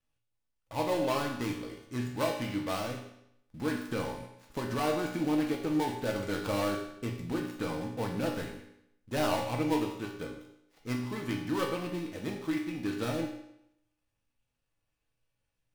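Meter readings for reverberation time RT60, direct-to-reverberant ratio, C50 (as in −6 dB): 0.80 s, −1.0 dB, 5.5 dB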